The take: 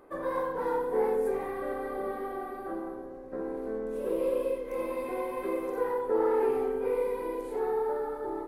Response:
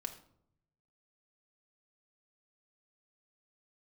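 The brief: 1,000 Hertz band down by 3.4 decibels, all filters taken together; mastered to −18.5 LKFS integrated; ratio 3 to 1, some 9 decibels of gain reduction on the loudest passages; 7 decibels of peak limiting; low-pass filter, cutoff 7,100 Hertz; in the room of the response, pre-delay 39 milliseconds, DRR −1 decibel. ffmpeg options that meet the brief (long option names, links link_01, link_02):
-filter_complex "[0:a]lowpass=7100,equalizer=frequency=1000:width_type=o:gain=-4,acompressor=threshold=-36dB:ratio=3,alimiter=level_in=9dB:limit=-24dB:level=0:latency=1,volume=-9dB,asplit=2[link_01][link_02];[1:a]atrim=start_sample=2205,adelay=39[link_03];[link_02][link_03]afir=irnorm=-1:irlink=0,volume=2.5dB[link_04];[link_01][link_04]amix=inputs=2:normalize=0,volume=17.5dB"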